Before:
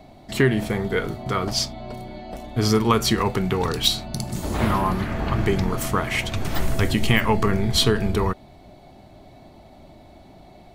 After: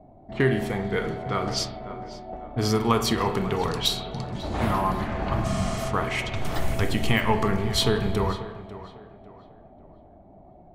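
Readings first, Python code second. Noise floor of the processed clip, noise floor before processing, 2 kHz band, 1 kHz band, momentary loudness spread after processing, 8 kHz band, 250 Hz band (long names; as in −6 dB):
−51 dBFS, −48 dBFS, −3.5 dB, −1.5 dB, 15 LU, −5.0 dB, −3.5 dB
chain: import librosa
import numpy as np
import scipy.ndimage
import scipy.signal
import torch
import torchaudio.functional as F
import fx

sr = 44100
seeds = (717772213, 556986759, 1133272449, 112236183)

p1 = fx.rev_spring(x, sr, rt60_s=1.1, pass_ms=(30, 35, 47), chirp_ms=25, drr_db=7.5)
p2 = fx.env_lowpass(p1, sr, base_hz=620.0, full_db=-18.0)
p3 = fx.peak_eq(p2, sr, hz=720.0, db=4.5, octaves=0.75)
p4 = p3 + fx.echo_tape(p3, sr, ms=546, feedback_pct=38, wet_db=-13.5, lp_hz=2700.0, drive_db=7.0, wow_cents=28, dry=0)
p5 = fx.spec_repair(p4, sr, seeds[0], start_s=5.47, length_s=0.35, low_hz=300.0, high_hz=9800.0, source='after')
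y = p5 * 10.0 ** (-4.5 / 20.0)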